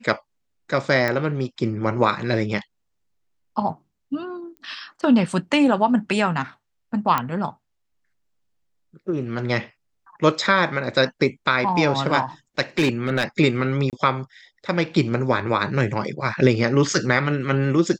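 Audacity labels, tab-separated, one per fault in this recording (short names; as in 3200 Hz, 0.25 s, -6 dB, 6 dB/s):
1.080000	1.080000	pop -10 dBFS
4.570000	4.570000	pop -29 dBFS
7.180000	7.180000	pop -8 dBFS
12.780000	13.240000	clipped -14 dBFS
13.900000	13.930000	gap 28 ms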